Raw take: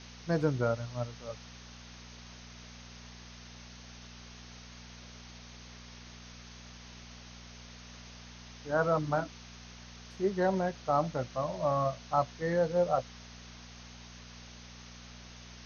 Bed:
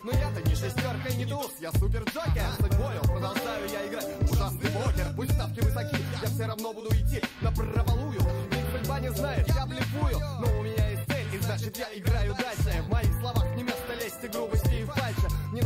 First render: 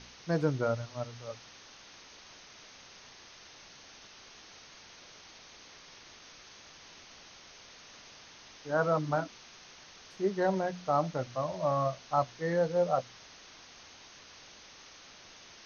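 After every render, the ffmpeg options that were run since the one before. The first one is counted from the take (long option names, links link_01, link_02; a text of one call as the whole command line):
ffmpeg -i in.wav -af "bandreject=frequency=60:width_type=h:width=4,bandreject=frequency=120:width_type=h:width=4,bandreject=frequency=180:width_type=h:width=4,bandreject=frequency=240:width_type=h:width=4" out.wav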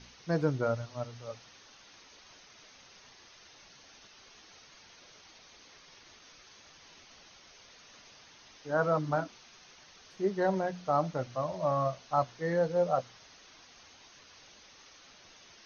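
ffmpeg -i in.wav -af "afftdn=noise_reduction=6:noise_floor=-54" out.wav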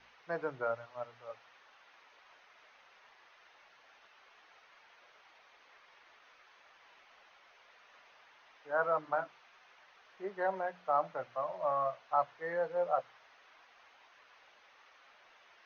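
ffmpeg -i in.wav -filter_complex "[0:a]acrossover=split=530 2700:gain=0.1 1 0.0708[link_01][link_02][link_03];[link_01][link_02][link_03]amix=inputs=3:normalize=0,bandreject=frequency=50:width_type=h:width=6,bandreject=frequency=100:width_type=h:width=6,bandreject=frequency=150:width_type=h:width=6" out.wav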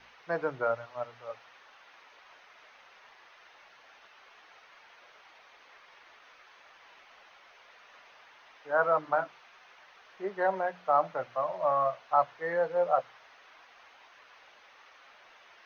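ffmpeg -i in.wav -af "volume=5.5dB" out.wav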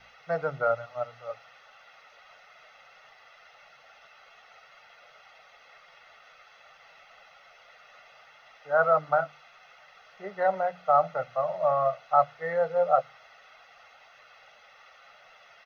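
ffmpeg -i in.wav -af "equalizer=frequency=150:width_type=o:width=0.24:gain=8,aecho=1:1:1.5:0.72" out.wav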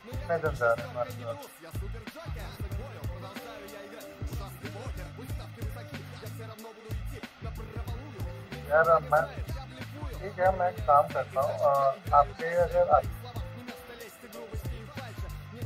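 ffmpeg -i in.wav -i bed.wav -filter_complex "[1:a]volume=-11.5dB[link_01];[0:a][link_01]amix=inputs=2:normalize=0" out.wav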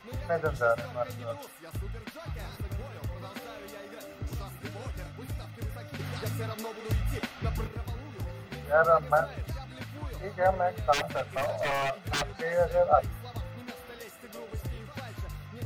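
ffmpeg -i in.wav -filter_complex "[0:a]asettb=1/sr,asplit=3[link_01][link_02][link_03];[link_01]atrim=end=5.994[link_04];[link_02]atrim=start=5.99:end=7.68,asetpts=PTS-STARTPTS,afade=type=in:duration=0.004:curve=qsin,afade=type=out:start_time=1.686:duration=0.004:curve=qsin,acontrast=86[link_05];[link_03]atrim=start=7.676[link_06];[link_04][link_05]acrossfade=duration=0.004:curve1=hsin:curve2=qsin[link_07];[link_07][link_06]acrossfade=duration=0.004:curve1=qsin:curve2=hsin,asplit=3[link_08][link_09][link_10];[link_08]afade=type=out:start_time=10.92:duration=0.02[link_11];[link_09]aeval=exprs='0.0631*(abs(mod(val(0)/0.0631+3,4)-2)-1)':channel_layout=same,afade=type=in:start_time=10.92:duration=0.02,afade=type=out:start_time=12.3:duration=0.02[link_12];[link_10]afade=type=in:start_time=12.3:duration=0.02[link_13];[link_11][link_12][link_13]amix=inputs=3:normalize=0" out.wav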